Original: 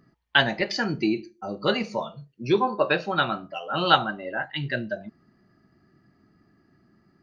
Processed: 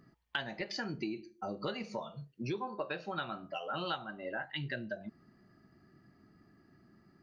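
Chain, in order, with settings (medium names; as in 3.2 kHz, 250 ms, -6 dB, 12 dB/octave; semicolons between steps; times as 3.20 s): compression 5:1, threshold -34 dBFS, peak gain reduction 19.5 dB; trim -2 dB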